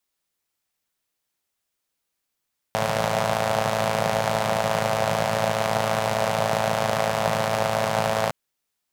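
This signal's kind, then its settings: four-cylinder engine model, steady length 5.56 s, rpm 3300, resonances 160/620 Hz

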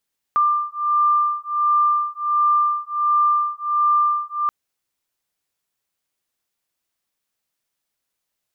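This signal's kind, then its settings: beating tones 1190 Hz, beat 1.4 Hz, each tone -19 dBFS 4.13 s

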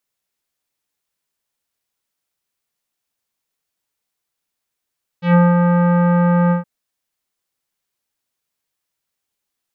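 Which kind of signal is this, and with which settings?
synth note square F3 24 dB/oct, low-pass 1500 Hz, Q 1.1, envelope 1.5 oct, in 0.14 s, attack 0.121 s, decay 0.20 s, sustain -4 dB, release 0.13 s, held 1.29 s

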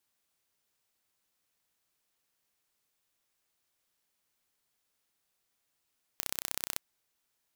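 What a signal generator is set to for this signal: pulse train 31.9/s, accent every 2, -4.5 dBFS 0.58 s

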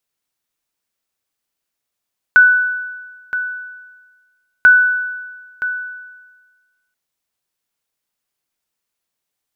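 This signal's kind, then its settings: sonar ping 1490 Hz, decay 1.37 s, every 2.29 s, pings 2, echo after 0.97 s, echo -12.5 dB -2.5 dBFS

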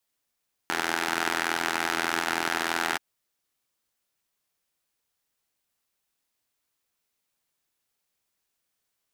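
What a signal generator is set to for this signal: four-cylinder engine model, steady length 2.28 s, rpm 2500, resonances 360/830/1400 Hz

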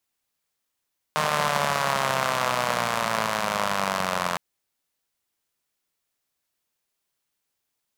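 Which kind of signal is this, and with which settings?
four-cylinder engine model, changing speed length 3.21 s, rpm 4600, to 2600, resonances 190/640/1000 Hz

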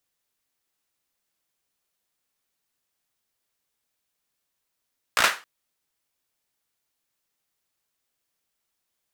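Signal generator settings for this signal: hand clap length 0.27 s, bursts 5, apart 17 ms, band 1500 Hz, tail 0.29 s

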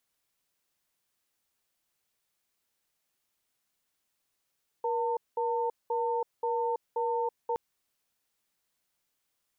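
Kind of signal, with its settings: cadence 475 Hz, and 903 Hz, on 0.33 s, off 0.20 s, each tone -29.5 dBFS 2.72 s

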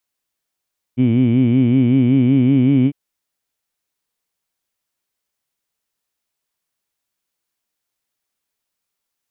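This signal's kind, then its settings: formant-synthesis vowel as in heed, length 1.95 s, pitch 120 Hz, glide +2 st, vibrato depth 1.2 st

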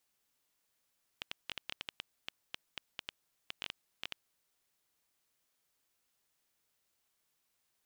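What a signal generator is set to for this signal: random clicks 7.5/s -21 dBFS 3.05 s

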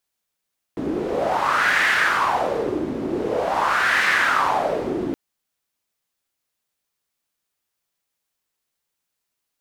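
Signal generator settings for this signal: wind-like swept noise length 4.37 s, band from 300 Hz, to 1800 Hz, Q 4.1, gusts 2, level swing 6.5 dB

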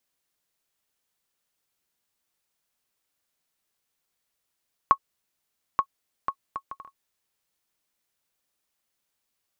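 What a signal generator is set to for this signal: bouncing ball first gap 0.88 s, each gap 0.56, 1100 Hz, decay 70 ms -6 dBFS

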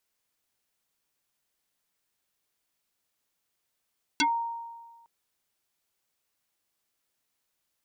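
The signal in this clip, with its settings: FM tone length 0.86 s, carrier 929 Hz, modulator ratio 1.31, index 5.6, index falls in 0.12 s exponential, decay 1.45 s, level -19.5 dB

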